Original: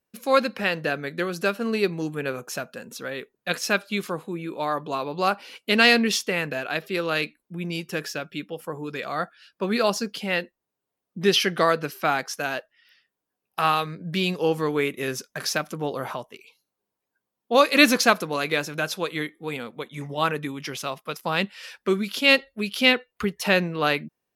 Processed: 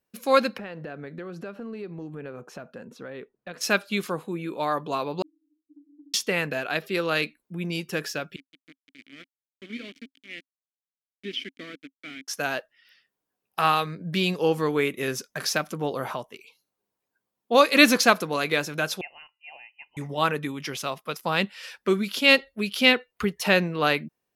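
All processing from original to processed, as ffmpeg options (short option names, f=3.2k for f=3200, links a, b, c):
-filter_complex "[0:a]asettb=1/sr,asplit=3[a][b][c];[a]atrim=end=0.584[d];[b]atrim=start=0.58:end=3.61,asetpts=PTS-STARTPTS,afade=t=in:d=0.004:c=qsin,afade=t=out:st=3.026:d=0.004:c=qsin,lowpass=f=1k:p=1,acompressor=threshold=-34dB:ratio=5:attack=3.2:release=140:knee=1:detection=peak[e];[c]atrim=start=3.606[f];[d][e]acrossfade=d=0.004:c1=hsin:c2=qsin[g];[g][f]acrossfade=d=0.004:c1=qsin:c2=hsin,asettb=1/sr,asplit=3[h][i][j];[h]atrim=end=5.224[k];[i]atrim=start=5.22:end=6.14,asetpts=PTS-STARTPTS,afade=t=in:d=0.004:c=qsin,afade=t=out:st=0.916:d=0.004:c=qsin,asuperpass=centerf=300:order=12:qfactor=7,acompressor=threshold=-47dB:ratio=2:attack=3.2:release=140:knee=1:detection=peak[l];[j]atrim=start=6.136[m];[k][l]acrossfade=d=0.004:c1=hsin:c2=qsin[n];[n][m]acrossfade=d=0.004:c1=qsin:c2=hsin,asettb=1/sr,asplit=3[o][p][q];[o]atrim=end=8.364[r];[p]atrim=start=8.36:end=12.28,asetpts=PTS-STARTPTS,afade=t=in:d=0.004:c=qsin,afade=t=out:st=3.916:d=0.004:c=qsin,bandreject=f=4.1k:w=16,aeval=exprs='val(0)*gte(abs(val(0)),0.0708)':c=same,asplit=3[s][t][u];[s]bandpass=f=270:t=q:w=8,volume=0dB[v];[t]bandpass=f=2.29k:t=q:w=8,volume=-6dB[w];[u]bandpass=f=3.01k:t=q:w=8,volume=-9dB[x];[v][w][x]amix=inputs=3:normalize=0[y];[q]atrim=start=12.276[z];[r][y]acrossfade=d=0.004:c1=hsin:c2=qsin[aa];[aa][z]acrossfade=d=0.004:c1=qsin:c2=hsin,asettb=1/sr,asplit=3[ab][ac][ad];[ab]atrim=end=19.014[ae];[ac]atrim=start=19.01:end=19.97,asetpts=PTS-STARTPTS,afade=t=in:d=0.004:c=qsin,afade=t=out:st=0.956:d=0.004:c=qsin,asplit=3[af][ag][ah];[af]bandpass=f=730:t=q:w=8,volume=0dB[ai];[ag]bandpass=f=1.09k:t=q:w=8,volume=-6dB[aj];[ah]bandpass=f=2.44k:t=q:w=8,volume=-9dB[ak];[ai][aj][ak]amix=inputs=3:normalize=0,lowpass=f=2.7k:t=q:w=0.5098,lowpass=f=2.7k:t=q:w=0.6013,lowpass=f=2.7k:t=q:w=0.9,lowpass=f=2.7k:t=q:w=2.563,afreqshift=-3200[al];[ad]atrim=start=19.966[am];[ae][al]acrossfade=d=0.004:c1=hsin:c2=qsin[an];[an][am]acrossfade=d=0.004:c1=qsin:c2=hsin"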